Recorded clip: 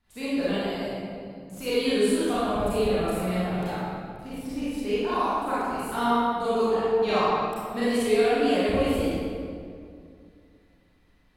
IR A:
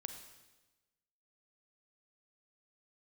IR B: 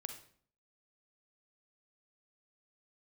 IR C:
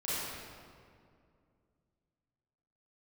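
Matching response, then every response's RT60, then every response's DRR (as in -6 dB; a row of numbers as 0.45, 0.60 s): C; 1.1, 0.55, 2.3 s; 6.0, 6.0, -12.0 dB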